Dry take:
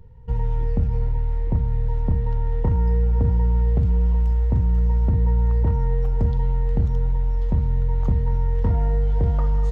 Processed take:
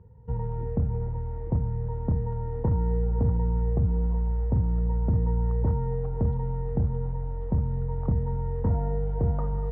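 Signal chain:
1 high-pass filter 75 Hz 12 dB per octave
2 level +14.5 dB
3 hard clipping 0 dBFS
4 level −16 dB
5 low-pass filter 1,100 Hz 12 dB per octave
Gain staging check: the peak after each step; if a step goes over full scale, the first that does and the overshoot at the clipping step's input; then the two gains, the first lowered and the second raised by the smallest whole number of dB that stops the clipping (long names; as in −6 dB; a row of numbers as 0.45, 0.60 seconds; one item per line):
−11.0, +3.5, 0.0, −16.0, −16.0 dBFS
step 2, 3.5 dB
step 2 +10.5 dB, step 4 −12 dB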